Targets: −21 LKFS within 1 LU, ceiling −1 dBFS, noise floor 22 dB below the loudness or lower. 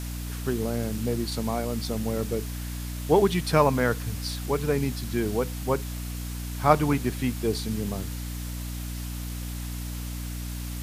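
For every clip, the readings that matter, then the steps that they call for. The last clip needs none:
mains hum 60 Hz; hum harmonics up to 300 Hz; level of the hum −31 dBFS; background noise floor −34 dBFS; target noise floor −50 dBFS; integrated loudness −28.0 LKFS; sample peak −4.0 dBFS; target loudness −21.0 LKFS
→ hum removal 60 Hz, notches 5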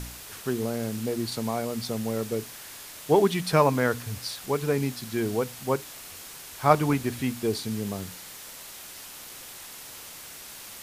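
mains hum none found; background noise floor −43 dBFS; target noise floor −49 dBFS
→ broadband denoise 6 dB, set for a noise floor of −43 dBFS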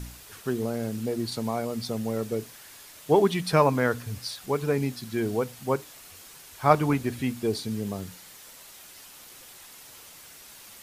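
background noise floor −48 dBFS; target noise floor −50 dBFS
→ broadband denoise 6 dB, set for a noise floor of −48 dBFS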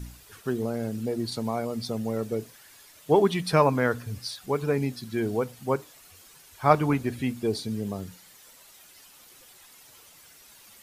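background noise floor −53 dBFS; integrated loudness −27.5 LKFS; sample peak −4.0 dBFS; target loudness −21.0 LKFS
→ level +6.5 dB
brickwall limiter −1 dBFS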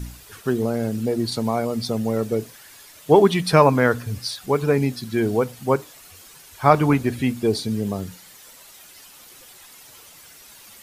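integrated loudness −21.0 LKFS; sample peak −1.0 dBFS; background noise floor −47 dBFS

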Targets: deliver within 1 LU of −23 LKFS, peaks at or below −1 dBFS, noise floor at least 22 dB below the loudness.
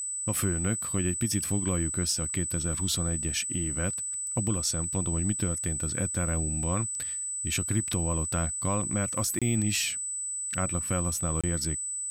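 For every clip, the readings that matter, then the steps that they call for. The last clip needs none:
number of dropouts 2; longest dropout 26 ms; interfering tone 8,000 Hz; level of the tone −31 dBFS; integrated loudness −28.0 LKFS; sample peak −16.0 dBFS; target loudness −23.0 LKFS
→ repair the gap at 0:09.39/0:11.41, 26 ms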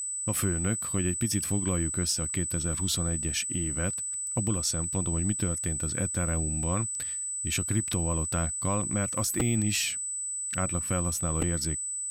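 number of dropouts 0; interfering tone 8,000 Hz; level of the tone −31 dBFS
→ notch filter 8,000 Hz, Q 30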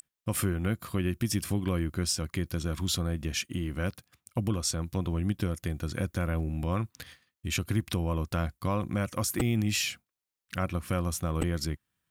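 interfering tone none found; integrated loudness −31.0 LKFS; sample peak −13.5 dBFS; target loudness −23.0 LKFS
→ level +8 dB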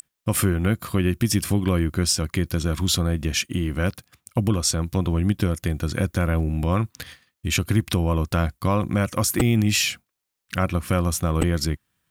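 integrated loudness −23.0 LKFS; sample peak −5.5 dBFS; background noise floor −81 dBFS

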